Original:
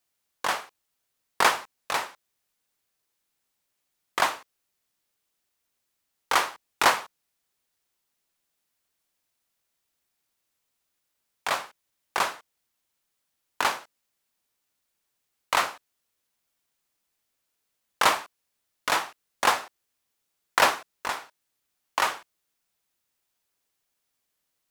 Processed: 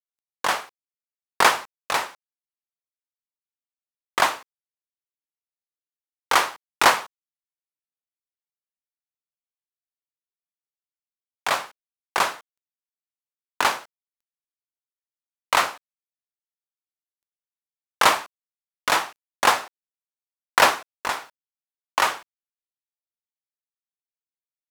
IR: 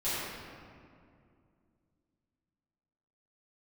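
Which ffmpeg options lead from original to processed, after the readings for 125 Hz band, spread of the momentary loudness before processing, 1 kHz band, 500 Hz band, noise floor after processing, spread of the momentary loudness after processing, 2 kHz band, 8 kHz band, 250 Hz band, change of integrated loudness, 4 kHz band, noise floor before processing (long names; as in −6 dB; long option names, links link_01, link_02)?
+4.0 dB, 13 LU, +4.0 dB, +4.0 dB, below −85 dBFS, 13 LU, +4.0 dB, +4.0 dB, +4.0 dB, +4.0 dB, +4.0 dB, −79 dBFS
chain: -af "acrusher=bits=10:mix=0:aa=0.000001,volume=4dB"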